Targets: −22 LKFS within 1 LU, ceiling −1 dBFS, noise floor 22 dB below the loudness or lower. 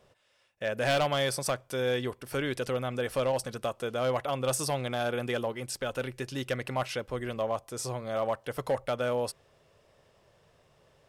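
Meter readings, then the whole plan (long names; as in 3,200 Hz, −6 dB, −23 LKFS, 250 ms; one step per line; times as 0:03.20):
share of clipped samples 0.7%; peaks flattened at −21.5 dBFS; integrated loudness −31.5 LKFS; sample peak −21.5 dBFS; target loudness −22.0 LKFS
→ clipped peaks rebuilt −21.5 dBFS
level +9.5 dB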